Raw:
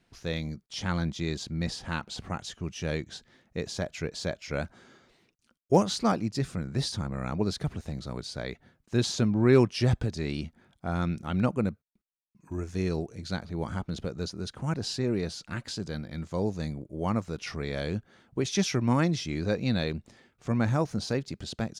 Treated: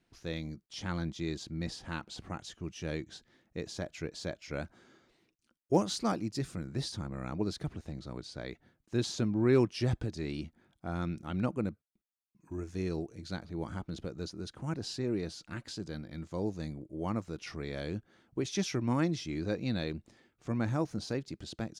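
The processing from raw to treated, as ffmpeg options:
-filter_complex "[0:a]asettb=1/sr,asplit=3[s0][s1][s2];[s0]atrim=end=5.834[s3];[s1]atrim=start=5.83:end=6.72,asetpts=PTS-STARTPTS,afade=t=in:d=0.004:c=qsin,afade=t=out:st=0.886:d=0.004:c=qsin,highshelf=f=5400:g=5.5[s4];[s2]atrim=start=6.716[s5];[s3][s4]acrossfade=d=0.004:c1=hsin:c2=qsin[s6];[s6][s5]acrossfade=d=0.004:c1=qsin:c2=hsin,asettb=1/sr,asplit=3[s7][s8][s9];[s7]atrim=end=7.674[s10];[s8]atrim=start=7.67:end=8.42,asetpts=PTS-STARTPTS,afade=t=in:d=0.004:c=qsin,afade=t=out:st=0.746:d=0.004:c=qsin,highshelf=f=8600:g=-7[s11];[s9]atrim=start=8.416[s12];[s10][s11]acrossfade=d=0.004:c1=hsin:c2=qsin[s13];[s13][s12]acrossfade=d=0.004:c1=qsin:c2=hsin,equalizer=f=320:w=4.7:g=6.5,volume=0.473"

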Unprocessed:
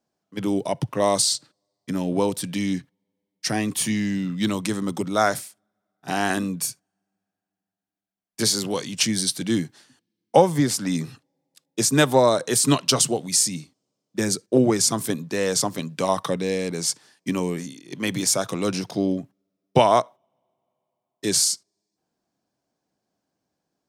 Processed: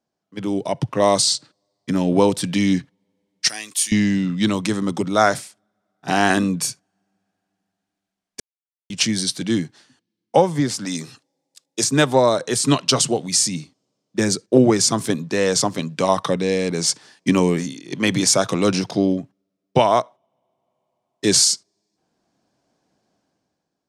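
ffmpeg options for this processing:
-filter_complex "[0:a]asettb=1/sr,asplit=3[s0][s1][s2];[s0]atrim=end=3.484[s3];[s1]atrim=start=3.48:end=3.92,asetpts=PTS-STARTPTS,afade=t=in:d=0.004:c=qsin,afade=t=out:st=0.436:d=0.004:c=qsin,aderivative[s4];[s2]atrim=start=3.916[s5];[s3][s4]acrossfade=d=0.004:c1=hsin:c2=qsin[s6];[s6][s5]acrossfade=d=0.004:c1=qsin:c2=hsin,asettb=1/sr,asplit=3[s7][s8][s9];[s7]atrim=end=10.854[s10];[s8]atrim=start=10.85:end=11.84,asetpts=PTS-STARTPTS,afade=t=in:d=0.004:c=qsin,afade=t=out:st=0.986:d=0.004:c=qsin,bass=f=250:g=-8,treble=f=4000:g=9[s11];[s9]atrim=start=11.836[s12];[s10][s11]acrossfade=d=0.004:c1=hsin:c2=qsin[s13];[s13][s12]acrossfade=d=0.004:c1=qsin:c2=hsin,asplit=3[s14][s15][s16];[s14]atrim=end=8.4,asetpts=PTS-STARTPTS,afade=t=out:st=8.396:d=0.004:c=hsin[s17];[s15]atrim=start=8.4:end=8.9,asetpts=PTS-STARTPTS,volume=0[s18];[s16]atrim=start=8.9,asetpts=PTS-STARTPTS,afade=t=in:d=0.004:c=hsin[s19];[s17][s18][s19]concat=n=3:v=0:a=1,lowpass=7800,dynaudnorm=f=110:g=13:m=3.76,volume=0.891"

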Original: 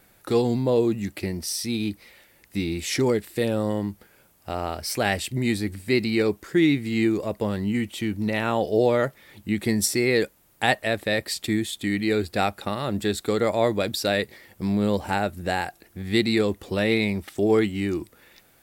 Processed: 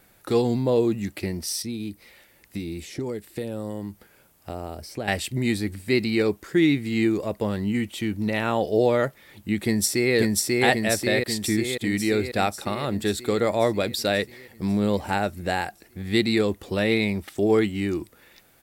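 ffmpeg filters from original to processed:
-filter_complex "[0:a]asettb=1/sr,asplit=3[s0][s1][s2];[s0]atrim=end=1.624[s3];[s1]atrim=start=1.62:end=5.08,asetpts=PTS-STARTPTS,afade=t=in:d=0.004:c=qsin,afade=t=out:st=3.456:d=0.004:c=qsin,acrossover=split=690|6500[s4][s5][s6];[s4]acompressor=threshold=0.0355:ratio=4[s7];[s5]acompressor=threshold=0.00562:ratio=4[s8];[s6]acompressor=threshold=0.00282:ratio=4[s9];[s7][s8][s9]amix=inputs=3:normalize=0[s10];[s2]atrim=start=5.076[s11];[s3][s10]acrossfade=d=0.004:c1=hsin:c2=qsin[s12];[s12][s11]acrossfade=d=0.004:c1=qsin:c2=hsin,asplit=2[s13][s14];[s14]afade=t=in:st=9.64:d=0.01,afade=t=out:st=10.15:d=0.01,aecho=0:1:540|1080|1620|2160|2700|3240|3780|4320|4860|5400|5940:0.944061|0.61364|0.398866|0.259263|0.168521|0.109538|0.0712|0.04628|0.030082|0.0195533|0.0127096[s15];[s13][s15]amix=inputs=2:normalize=0"

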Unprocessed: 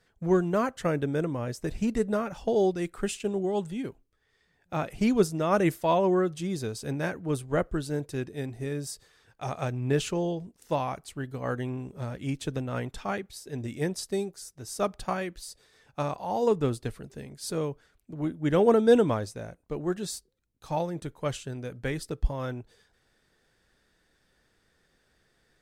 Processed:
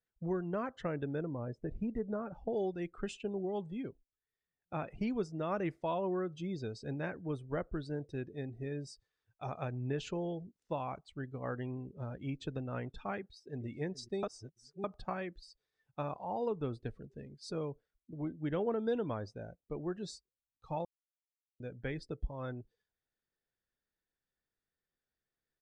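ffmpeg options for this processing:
-filter_complex "[0:a]asettb=1/sr,asplit=3[s0][s1][s2];[s0]atrim=end=1.224[s3];[s1]atrim=start=1.22:end=2.53,asetpts=PTS-STARTPTS,afade=t=in:d=0.004:c=qsin,afade=t=out:st=1.306:d=0.004:c=qsin,highshelf=f=2000:g=-11.5[s4];[s2]atrim=start=2.526[s5];[s3][s4]acrossfade=d=0.004:c1=hsin:c2=qsin[s6];[s6][s5]acrossfade=d=0.004:c1=qsin:c2=hsin,asplit=2[s7][s8];[s8]afade=t=in:st=13.18:d=0.01,afade=t=out:st=13.66:d=0.01,aecho=0:1:420|840|1260:0.149624|0.0448871|0.0134661[s9];[s7][s9]amix=inputs=2:normalize=0,asplit=5[s10][s11][s12][s13][s14];[s10]atrim=end=14.232[s15];[s11]atrim=start=14.228:end=14.842,asetpts=PTS-STARTPTS,areverse[s16];[s12]atrim=start=14.838:end=20.85,asetpts=PTS-STARTPTS,afade=t=out:st=6.008:d=0.004:c=hsin[s17];[s13]atrim=start=20.85:end=21.6,asetpts=PTS-STARTPTS,volume=0[s18];[s14]atrim=start=21.6,asetpts=PTS-STARTPTS,afade=t=in:d=0.004:c=hsin[s19];[s15][s16]acrossfade=d=0.004:c1=hsin:c2=hsin[s20];[s17][s18][s19]concat=n=3:v=0:a=1[s21];[s20][s21]acrossfade=d=0.004:c1=hsin:c2=hsin,lowpass=5900,afftdn=nr=19:nf=-45,acompressor=threshold=0.0447:ratio=2.5,volume=0.473"

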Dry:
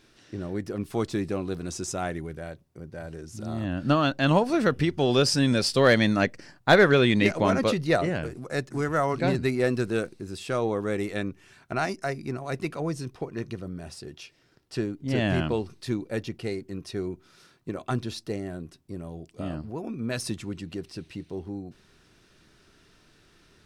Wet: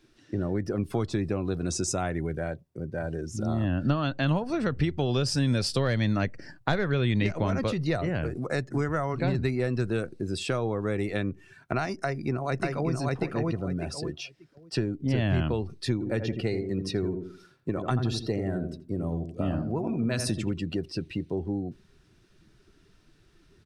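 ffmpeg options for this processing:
-filter_complex "[0:a]asplit=2[s0][s1];[s1]afade=t=in:st=11.96:d=0.01,afade=t=out:st=12.92:d=0.01,aecho=0:1:590|1180|1770:0.891251|0.17825|0.03565[s2];[s0][s2]amix=inputs=2:normalize=0,asplit=3[s3][s4][s5];[s3]afade=t=out:st=16:d=0.02[s6];[s4]asplit=2[s7][s8];[s8]adelay=83,lowpass=f=2000:p=1,volume=0.447,asplit=2[s9][s10];[s10]adelay=83,lowpass=f=2000:p=1,volume=0.39,asplit=2[s11][s12];[s12]adelay=83,lowpass=f=2000:p=1,volume=0.39,asplit=2[s13][s14];[s14]adelay=83,lowpass=f=2000:p=1,volume=0.39,asplit=2[s15][s16];[s16]adelay=83,lowpass=f=2000:p=1,volume=0.39[s17];[s7][s9][s11][s13][s15][s17]amix=inputs=6:normalize=0,afade=t=in:st=16:d=0.02,afade=t=out:st=20.52:d=0.02[s18];[s5]afade=t=in:st=20.52:d=0.02[s19];[s6][s18][s19]amix=inputs=3:normalize=0,afftdn=nr=13:nf=-49,acrossover=split=120[s20][s21];[s21]acompressor=threshold=0.0251:ratio=10[s22];[s20][s22]amix=inputs=2:normalize=0,volume=2.11"

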